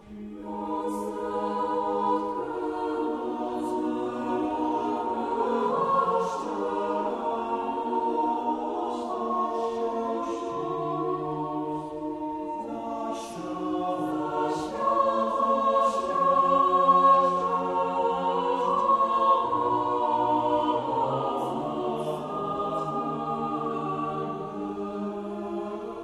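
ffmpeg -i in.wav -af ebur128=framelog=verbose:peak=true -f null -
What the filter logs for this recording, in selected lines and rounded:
Integrated loudness:
  I:         -27.0 LUFS
  Threshold: -37.0 LUFS
Loudness range:
  LRA:         8.5 LU
  Threshold: -46.7 LUFS
  LRA low:   -31.1 LUFS
  LRA high:  -22.6 LUFS
True peak:
  Peak:       -9.6 dBFS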